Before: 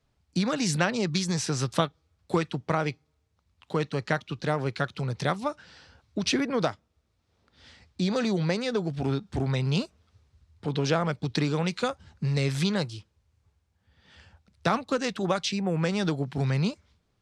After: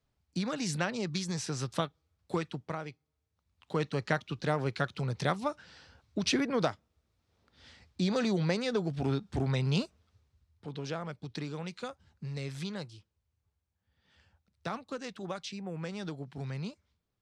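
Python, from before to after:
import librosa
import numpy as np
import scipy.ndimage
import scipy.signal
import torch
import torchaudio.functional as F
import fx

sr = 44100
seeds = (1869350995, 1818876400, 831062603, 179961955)

y = fx.gain(x, sr, db=fx.line((2.54, -7.0), (2.89, -14.0), (3.85, -3.0), (9.83, -3.0), (10.71, -12.0)))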